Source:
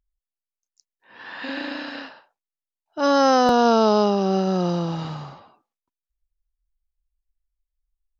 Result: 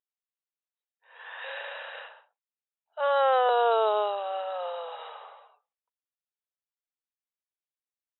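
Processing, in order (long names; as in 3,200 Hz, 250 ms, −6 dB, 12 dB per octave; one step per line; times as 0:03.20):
linear-phase brick-wall band-pass 420–3,900 Hz
level −5 dB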